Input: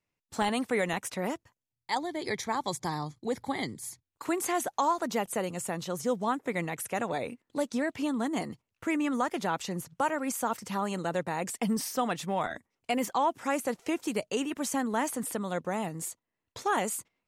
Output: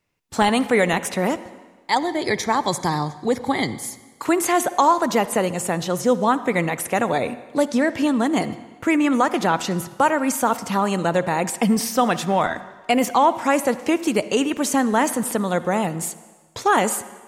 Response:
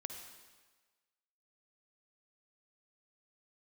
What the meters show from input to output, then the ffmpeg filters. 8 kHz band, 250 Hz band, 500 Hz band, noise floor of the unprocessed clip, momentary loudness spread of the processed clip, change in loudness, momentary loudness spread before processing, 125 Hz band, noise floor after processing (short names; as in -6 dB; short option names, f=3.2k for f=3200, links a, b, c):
+9.0 dB, +11.0 dB, +11.0 dB, under -85 dBFS, 7 LU, +11.0 dB, 7 LU, +11.0 dB, -49 dBFS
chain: -filter_complex "[0:a]asplit=2[a][b];[1:a]atrim=start_sample=2205,highshelf=f=8.6k:g=-12[c];[b][c]afir=irnorm=-1:irlink=0,volume=-3dB[d];[a][d]amix=inputs=2:normalize=0,volume=7.5dB"